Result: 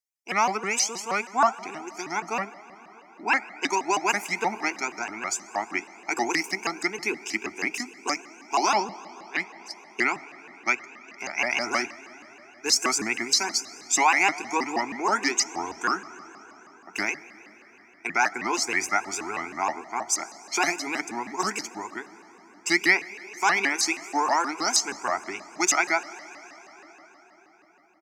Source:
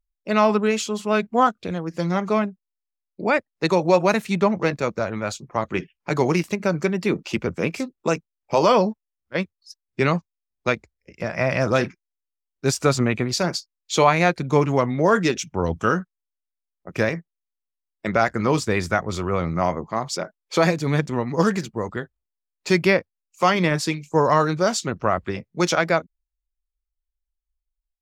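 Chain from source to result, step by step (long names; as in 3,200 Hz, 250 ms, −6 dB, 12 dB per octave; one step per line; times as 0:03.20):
high-pass filter 500 Hz 12 dB per octave
parametric band 5,800 Hz +10.5 dB 0.83 octaves
phaser with its sweep stopped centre 760 Hz, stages 8
comb filter 0.9 ms, depth 82%
on a send at −15 dB: convolution reverb RT60 5.7 s, pre-delay 11 ms
on the sum: pitch modulation by a square or saw wave saw up 6.3 Hz, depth 250 cents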